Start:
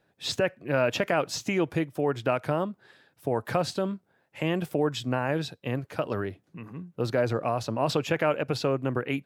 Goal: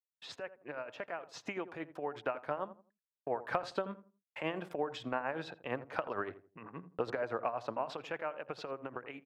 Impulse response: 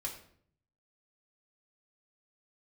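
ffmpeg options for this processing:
-filter_complex "[0:a]anlmdn=0.00398,bandpass=f=1.1k:t=q:w=0.88:csg=0,acompressor=threshold=-35dB:ratio=8,agate=range=-56dB:threshold=-56dB:ratio=16:detection=peak,dynaudnorm=f=850:g=5:m=8dB,tremolo=f=8.7:d=0.63,asplit=2[a][b];[b]adelay=83,lowpass=f=1k:p=1,volume=-13dB,asplit=2[c][d];[d]adelay=83,lowpass=f=1k:p=1,volume=0.3,asplit=2[e][f];[f]adelay=83,lowpass=f=1k:p=1,volume=0.3[g];[c][e][g]amix=inputs=3:normalize=0[h];[a][h]amix=inputs=2:normalize=0,volume=-1.5dB"

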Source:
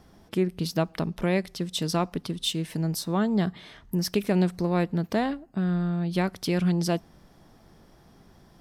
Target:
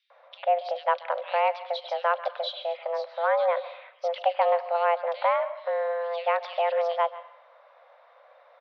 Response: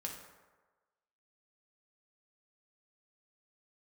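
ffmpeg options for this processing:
-filter_complex "[0:a]acrossover=split=2700[a][b];[a]adelay=100[c];[c][b]amix=inputs=2:normalize=0,asplit=2[d][e];[1:a]atrim=start_sample=2205,asetrate=61740,aresample=44100,adelay=136[f];[e][f]afir=irnorm=-1:irlink=0,volume=-11.5dB[g];[d][g]amix=inputs=2:normalize=0,highpass=f=200:t=q:w=0.5412,highpass=f=200:t=q:w=1.307,lowpass=f=3.3k:t=q:w=0.5176,lowpass=f=3.3k:t=q:w=0.7071,lowpass=f=3.3k:t=q:w=1.932,afreqshift=340,volume=2.5dB"

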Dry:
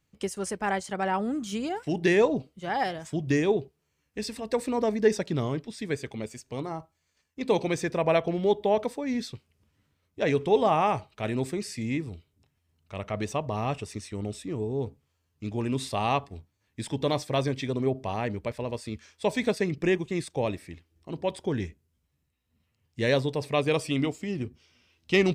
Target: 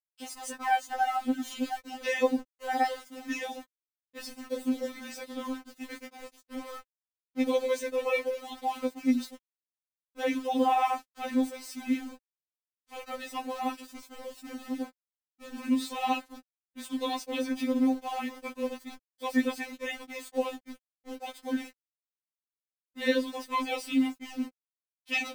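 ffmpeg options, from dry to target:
-filter_complex "[0:a]asettb=1/sr,asplit=3[a][b][c];[a]atrim=end=4.224[d];[b]atrim=start=4.22:end=6.76,asetpts=PTS-STARTPTS,afade=t=in:d=0.004:c=qsin,afade=t=out:st=2.536:d=0.004:c=qsin,flanger=delay=17:depth=6.2:speed=1.1[e];[c]atrim=start=6.756[f];[d][e]acrossfade=d=0.004:c1=hsin:c2=qsin[g];[g][f]acrossfade=d=0.004:c1=qsin:c2=hsin,aeval=exprs='val(0)*gte(abs(val(0)),0.0133)':c=same,afftfilt=real='re*3.46*eq(mod(b,12),0)':imag='im*3.46*eq(mod(b,12),0)':win_size=2048:overlap=0.75"

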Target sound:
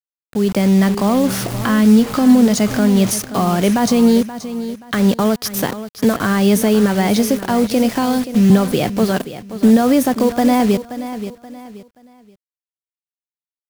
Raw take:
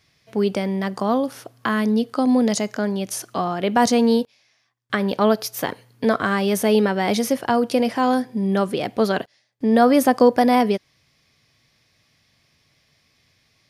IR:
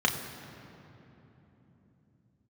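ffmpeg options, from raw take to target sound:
-filter_complex "[0:a]asettb=1/sr,asplit=3[a][b][c];[a]atrim=end=1.254[d];[b]atrim=start=1.25:end=3.14,asetpts=PTS-STARTPTS,afade=t=in:d=0.004:c=qsin,afade=t=out:st=1.886:d=0.004:c=qsin,aeval=exprs='val(0)+0.5*0.0335*sgn(val(0))':c=same[e];[c]atrim=start=3.136[f];[d][e]acrossfade=d=0.004:c1=hsin:c2=qsin[g];[g][f]acrossfade=d=0.004:c1=qsin:c2=hsin,asettb=1/sr,asplit=3[h][i][j];[h]atrim=end=7.954[k];[i]atrim=start=7.95:end=8.5,asetpts=PTS-STARTPTS,afade=t=in:d=0.004:c=qsin,afade=t=out:st=0.546:d=0.004:c=qsin,acrossover=split=140|3000[l][m][n];[m]acompressor=threshold=-22dB:ratio=6[o];[l][o][n]amix=inputs=3:normalize=0[p];[j]atrim=start=8.496[q];[k][p]acrossfade=d=0.004:c1=hsin:c2=qsin[r];[r][q]acrossfade=d=0.004:c1=qsin:c2=hsin,highpass=f=88:w=0.5412,highpass=f=88:w=1.3066,alimiter=limit=-14dB:level=0:latency=1:release=205,acrusher=bits=5:mix=0:aa=0.000001,aecho=1:1:528|1056|1584:0.224|0.0582|0.0151,dynaudnorm=f=300:g=3:m=14dB,bass=f=250:g=9,treble=f=4k:g=1,volume=-4.5dB"

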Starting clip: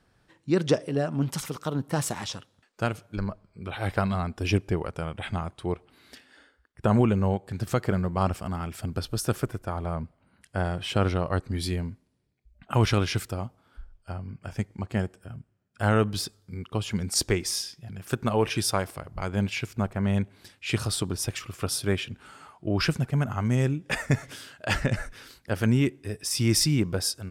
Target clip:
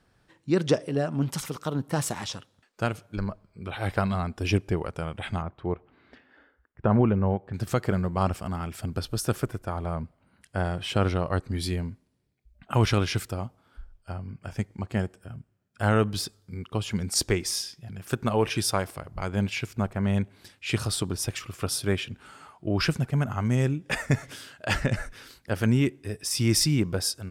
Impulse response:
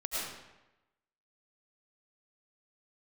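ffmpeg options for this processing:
-filter_complex "[0:a]asettb=1/sr,asplit=3[a][b][c];[a]atrim=end=5.424[d];[b]atrim=start=5.42:end=7.54,asetpts=PTS-STARTPTS,afade=t=in:d=0.004:c=qsin,afade=t=out:st=2.116:d=0.004:c=qsin,lowpass=1.9k[e];[c]atrim=start=7.536[f];[d][e]acrossfade=d=0.004:c1=hsin:c2=qsin[g];[g][f]acrossfade=d=0.004:c1=qsin:c2=hsin"

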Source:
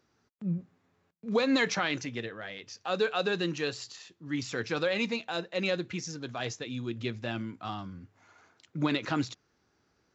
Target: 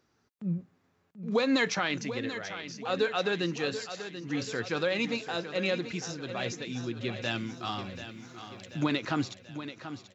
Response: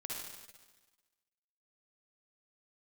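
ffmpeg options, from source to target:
-filter_complex "[0:a]asettb=1/sr,asplit=3[a][b][c];[a]atrim=end=7.224[d];[b]atrim=start=7.22:end=8.84,asetpts=PTS-STARTPTS,afade=t=in:d=0.004:c=qsin,afade=t=out:st=1.616:d=0.004:c=qsin,highshelf=f=2.3k:g=11.5[e];[c]atrim=start=8.836[f];[d][e]acrossfade=d=0.004:c1=hsin:c2=qsin[g];[g][f]acrossfade=d=0.004:c1=qsin:c2=hsin,aecho=1:1:735|1470|2205|2940|3675|4410:0.282|0.158|0.0884|0.0495|0.0277|0.0155"

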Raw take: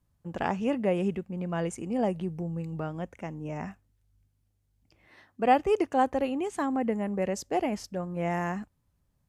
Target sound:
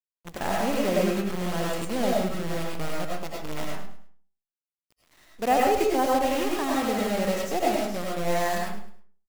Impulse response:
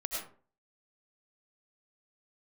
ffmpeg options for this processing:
-filter_complex "[0:a]acrusher=bits=6:dc=4:mix=0:aa=0.000001,aecho=1:1:105|210|315:0.251|0.0728|0.0211[a];[1:a]atrim=start_sample=2205[b];[a][b]afir=irnorm=-1:irlink=0"

